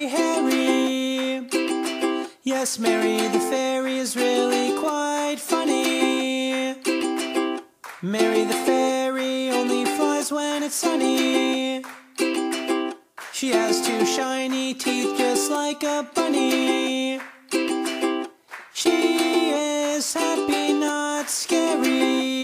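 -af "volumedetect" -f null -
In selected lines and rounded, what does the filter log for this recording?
mean_volume: -22.8 dB
max_volume: -6.8 dB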